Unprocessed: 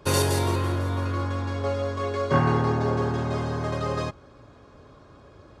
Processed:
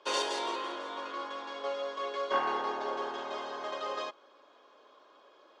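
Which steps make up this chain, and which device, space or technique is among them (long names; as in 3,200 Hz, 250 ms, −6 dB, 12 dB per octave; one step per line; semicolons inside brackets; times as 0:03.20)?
phone speaker on a table (loudspeaker in its box 380–6,900 Hz, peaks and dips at 410 Hz −3 dB, 990 Hz +4 dB, 3,200 Hz +9 dB)
level −6.5 dB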